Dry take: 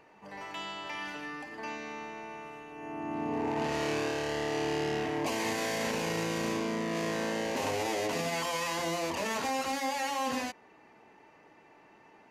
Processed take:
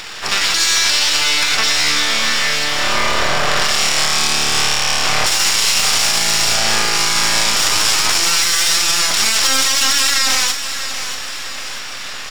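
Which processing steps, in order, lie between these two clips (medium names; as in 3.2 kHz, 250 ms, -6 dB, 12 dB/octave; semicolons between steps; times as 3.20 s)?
full-wave rectifier; tilt shelf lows -7.5 dB; compression 10:1, threshold -41 dBFS, peak gain reduction 13 dB; peaking EQ 5.9 kHz +13 dB 0.71 oct; band-stop 6.2 kHz, Q 5.9; doubling 41 ms -10 dB; feedback delay 639 ms, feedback 53%, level -12.5 dB; loudness maximiser +30.5 dB; trim -3 dB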